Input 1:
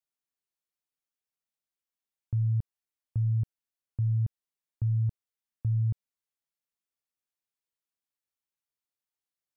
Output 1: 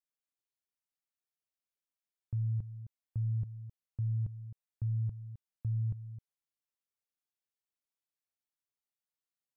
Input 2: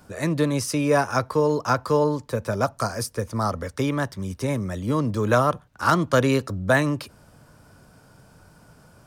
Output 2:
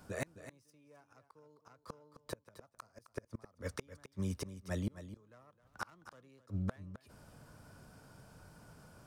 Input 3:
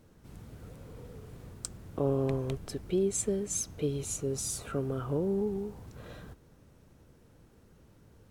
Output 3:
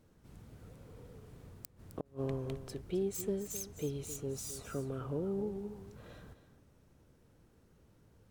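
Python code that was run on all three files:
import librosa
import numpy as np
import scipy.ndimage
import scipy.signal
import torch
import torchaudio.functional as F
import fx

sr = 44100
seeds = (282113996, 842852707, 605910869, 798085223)

y = fx.self_delay(x, sr, depth_ms=0.07)
y = fx.gate_flip(y, sr, shuts_db=-19.0, range_db=-36)
y = y + 10.0 ** (-12.5 / 20.0) * np.pad(y, (int(262 * sr / 1000.0), 0))[:len(y)]
y = y * 10.0 ** (-6.0 / 20.0)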